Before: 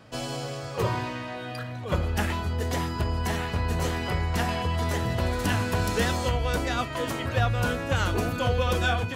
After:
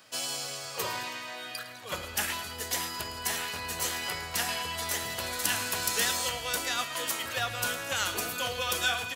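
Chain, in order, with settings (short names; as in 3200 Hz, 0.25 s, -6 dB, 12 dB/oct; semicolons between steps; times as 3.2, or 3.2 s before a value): tilt +4.5 dB/oct; notches 60/120 Hz; feedback echo 0.108 s, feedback 57%, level -14 dB; gain -5 dB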